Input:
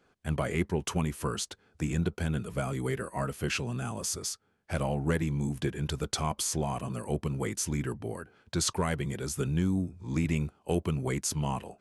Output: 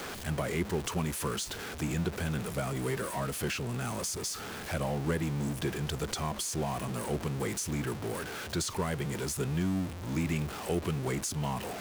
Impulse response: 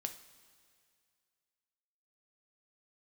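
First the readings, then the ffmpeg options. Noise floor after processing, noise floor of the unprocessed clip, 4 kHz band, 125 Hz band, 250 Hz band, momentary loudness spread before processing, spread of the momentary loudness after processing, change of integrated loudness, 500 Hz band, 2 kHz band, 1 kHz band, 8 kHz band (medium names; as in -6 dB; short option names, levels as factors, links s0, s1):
-41 dBFS, -69 dBFS, -0.5 dB, -2.5 dB, -1.5 dB, 6 LU, 3 LU, -1.5 dB, -0.5 dB, +0.5 dB, -0.5 dB, -1.5 dB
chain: -filter_complex "[0:a]aeval=exprs='val(0)+0.5*0.0266*sgn(val(0))':c=same,lowshelf=f=270:g=-4.5,acrossover=split=460[s0][s1];[s1]acompressor=threshold=0.0282:ratio=6[s2];[s0][s2]amix=inputs=2:normalize=0,volume=0.841"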